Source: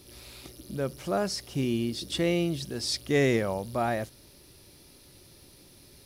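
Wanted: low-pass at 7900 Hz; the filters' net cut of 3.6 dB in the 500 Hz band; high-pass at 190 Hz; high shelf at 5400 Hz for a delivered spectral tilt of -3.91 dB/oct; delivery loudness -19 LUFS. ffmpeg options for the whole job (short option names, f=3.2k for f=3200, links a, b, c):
-af "highpass=190,lowpass=7.9k,equalizer=f=500:t=o:g=-4.5,highshelf=f=5.4k:g=3.5,volume=12dB"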